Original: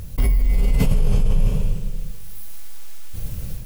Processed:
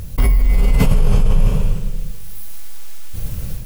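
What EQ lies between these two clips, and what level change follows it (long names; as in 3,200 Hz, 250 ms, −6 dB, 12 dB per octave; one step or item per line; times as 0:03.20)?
dynamic equaliser 1,200 Hz, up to +6 dB, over −49 dBFS, Q 1
+4.0 dB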